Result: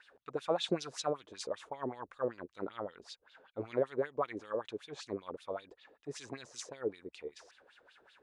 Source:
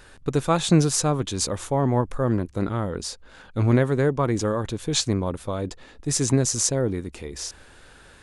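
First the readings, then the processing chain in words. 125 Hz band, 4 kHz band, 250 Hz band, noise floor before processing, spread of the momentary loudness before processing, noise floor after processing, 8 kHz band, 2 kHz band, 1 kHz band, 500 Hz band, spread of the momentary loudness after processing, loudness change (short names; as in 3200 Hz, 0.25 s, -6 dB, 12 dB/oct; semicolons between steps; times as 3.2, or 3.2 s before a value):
-28.5 dB, -14.5 dB, -19.5 dB, -50 dBFS, 14 LU, -74 dBFS, -24.5 dB, -13.5 dB, -12.5 dB, -11.0 dB, 13 LU, -15.5 dB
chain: wah 5.2 Hz 420–3900 Hz, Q 3.5; gain -3 dB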